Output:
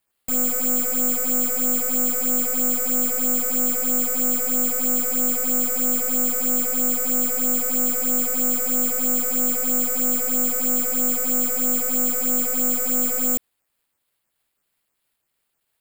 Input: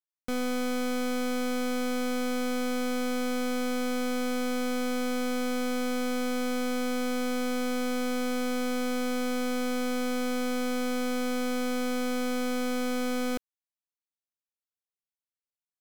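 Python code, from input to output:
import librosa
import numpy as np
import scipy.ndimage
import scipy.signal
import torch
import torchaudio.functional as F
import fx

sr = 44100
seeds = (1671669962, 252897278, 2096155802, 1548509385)

y = fx.fold_sine(x, sr, drive_db=10, ceiling_db=-28.5)
y = fx.phaser_stages(y, sr, stages=6, low_hz=220.0, high_hz=3600.0, hz=3.1, feedback_pct=5)
y = (np.kron(y[::6], np.eye(6)[0]) * 6)[:len(y)]
y = fx.peak_eq(y, sr, hz=5900.0, db=-13.5, octaves=0.34)
y = F.gain(torch.from_numpy(y), 2.0).numpy()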